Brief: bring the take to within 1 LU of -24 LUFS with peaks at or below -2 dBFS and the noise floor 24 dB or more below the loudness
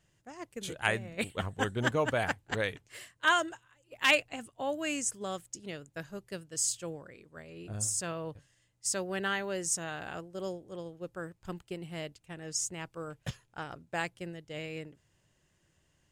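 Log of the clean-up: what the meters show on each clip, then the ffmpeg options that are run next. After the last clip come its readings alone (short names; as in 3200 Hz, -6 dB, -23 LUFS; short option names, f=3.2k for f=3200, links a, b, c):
loudness -34.0 LUFS; peak -10.0 dBFS; loudness target -24.0 LUFS
-> -af "volume=10dB,alimiter=limit=-2dB:level=0:latency=1"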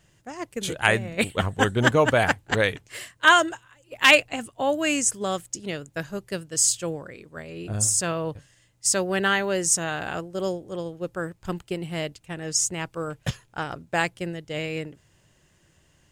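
loudness -24.0 LUFS; peak -2.0 dBFS; noise floor -63 dBFS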